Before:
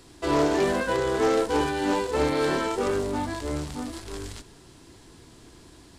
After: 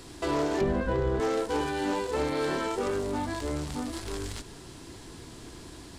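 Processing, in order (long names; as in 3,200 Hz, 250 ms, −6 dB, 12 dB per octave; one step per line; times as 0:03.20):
0:00.61–0:01.20: RIAA equalisation playback
downward compressor 2 to 1, threshold −39 dBFS, peak gain reduction 12.5 dB
slew-rate limiting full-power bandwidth 110 Hz
level +5 dB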